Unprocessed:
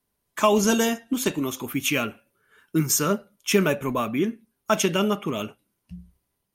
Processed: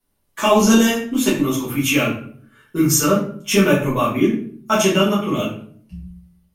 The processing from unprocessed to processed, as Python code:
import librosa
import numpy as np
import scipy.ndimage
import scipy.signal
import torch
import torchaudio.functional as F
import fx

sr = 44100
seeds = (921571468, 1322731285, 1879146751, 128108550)

y = fx.room_shoebox(x, sr, seeds[0], volume_m3=56.0, walls='mixed', distance_m=1.7)
y = y * 10.0 ** (-3.0 / 20.0)